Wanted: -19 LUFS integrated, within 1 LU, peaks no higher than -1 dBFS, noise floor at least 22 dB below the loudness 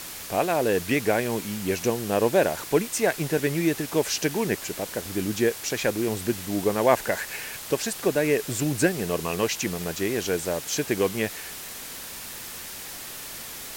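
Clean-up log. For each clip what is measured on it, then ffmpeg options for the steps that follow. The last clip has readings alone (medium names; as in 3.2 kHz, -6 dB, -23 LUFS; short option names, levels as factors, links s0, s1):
noise floor -38 dBFS; noise floor target -48 dBFS; loudness -26.0 LUFS; peak level -5.0 dBFS; loudness target -19.0 LUFS
-> -af "afftdn=nr=10:nf=-38"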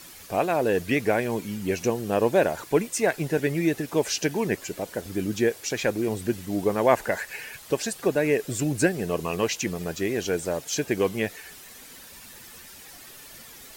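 noise floor -46 dBFS; noise floor target -48 dBFS
-> -af "afftdn=nr=6:nf=-46"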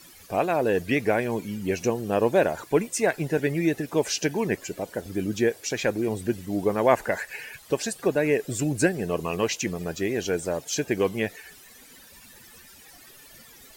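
noise floor -50 dBFS; loudness -26.0 LUFS; peak level -5.0 dBFS; loudness target -19.0 LUFS
-> -af "volume=2.24,alimiter=limit=0.891:level=0:latency=1"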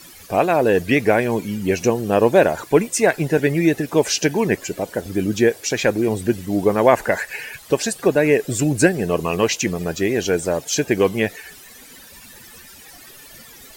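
loudness -19.0 LUFS; peak level -1.0 dBFS; noise floor -43 dBFS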